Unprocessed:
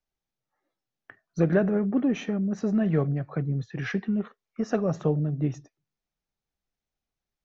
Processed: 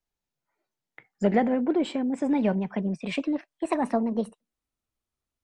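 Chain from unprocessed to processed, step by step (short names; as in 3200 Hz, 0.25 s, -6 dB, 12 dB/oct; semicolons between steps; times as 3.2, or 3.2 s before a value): speed glide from 106% -> 168%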